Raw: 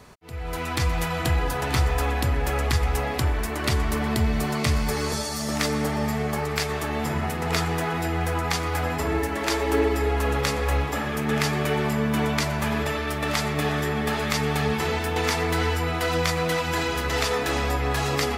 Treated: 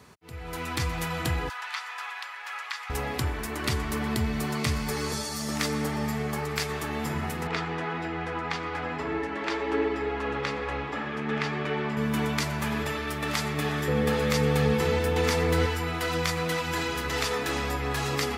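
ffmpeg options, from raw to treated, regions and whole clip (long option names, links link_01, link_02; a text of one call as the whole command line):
ffmpeg -i in.wav -filter_complex "[0:a]asettb=1/sr,asplit=3[link_01][link_02][link_03];[link_01]atrim=end=1.494[link_04];[link_02]atrim=start=1.49:end=2.9,asetpts=PTS-STARTPTS,afade=type=in:duration=0.004:curve=qsin,afade=type=out:start_time=1.406:duration=0.004:curve=qsin,acrossover=split=6100[link_05][link_06];[link_06]acompressor=threshold=-42dB:ratio=4:attack=1:release=60[link_07];[link_05][link_07]amix=inputs=2:normalize=0,highpass=frequency=1000:width=0.5412,highpass=frequency=1000:width=1.3066,highshelf=frequency=7000:gain=-10.5[link_08];[link_03]atrim=start=2.896[link_09];[link_04][link_08]acrossfade=duration=0.004:curve1=hsin:curve2=qsin[link_10];[link_10][link_09]acrossfade=duration=0.004:curve1=qsin:curve2=hsin,asettb=1/sr,asplit=3[link_11][link_12][link_13];[link_11]atrim=end=7.474[link_14];[link_12]atrim=start=7.47:end=11.97,asetpts=PTS-STARTPTS,afade=type=in:duration=0.004:curve=qsin,afade=type=out:start_time=4.496:duration=0.004:curve=qsin,lowpass=3300,equalizer=frequency=82:width=0.91:gain=-9.5[link_15];[link_13]atrim=start=11.966[link_16];[link_14][link_15]acrossfade=duration=0.004:curve1=hsin:curve2=qsin[link_17];[link_17][link_16]acrossfade=duration=0.004:curve1=qsin:curve2=hsin,asettb=1/sr,asplit=3[link_18][link_19][link_20];[link_18]atrim=end=13.884[link_21];[link_19]atrim=start=13.88:end=15.66,asetpts=PTS-STARTPTS,afade=type=in:duration=0.004:curve=qsin,afade=type=out:start_time=1.776:duration=0.004:curve=qsin,lowshelf=frequency=280:gain=7,volume=9.5dB,asoftclip=hard,volume=-9.5dB,aeval=exprs='val(0)+0.0794*sin(2*PI*500*n/s)':channel_layout=same[link_22];[link_20]atrim=start=15.656[link_23];[link_21][link_22]acrossfade=duration=0.004:curve1=hsin:curve2=qsin[link_24];[link_24][link_23]acrossfade=duration=0.004:curve1=qsin:curve2=hsin,highpass=77,equalizer=frequency=640:width=2.5:gain=-5,volume=-3dB" out.wav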